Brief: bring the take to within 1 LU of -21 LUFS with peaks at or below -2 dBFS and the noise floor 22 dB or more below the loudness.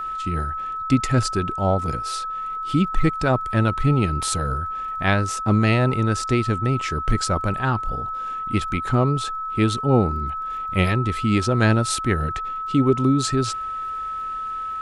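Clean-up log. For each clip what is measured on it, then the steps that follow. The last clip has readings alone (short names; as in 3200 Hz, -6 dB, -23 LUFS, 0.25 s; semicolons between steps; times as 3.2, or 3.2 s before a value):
ticks 35/s; steady tone 1300 Hz; tone level -26 dBFS; loudness -22.0 LUFS; peak -4.0 dBFS; loudness target -21.0 LUFS
-> de-click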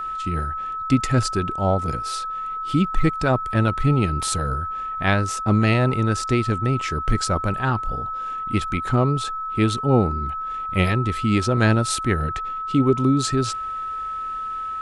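ticks 0.067/s; steady tone 1300 Hz; tone level -26 dBFS
-> notch 1300 Hz, Q 30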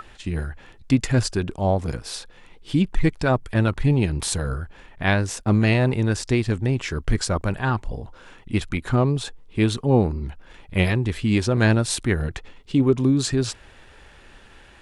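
steady tone none; loudness -22.5 LUFS; peak -4.0 dBFS; loudness target -21.0 LUFS
-> gain +1.5 dB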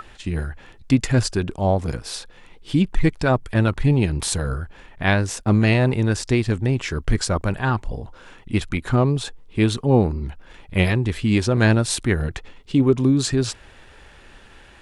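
loudness -21.0 LUFS; peak -2.5 dBFS; noise floor -48 dBFS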